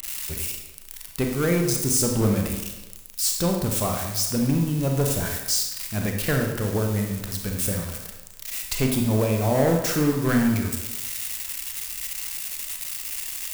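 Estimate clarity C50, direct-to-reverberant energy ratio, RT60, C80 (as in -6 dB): 3.5 dB, 1.5 dB, 1.0 s, 6.0 dB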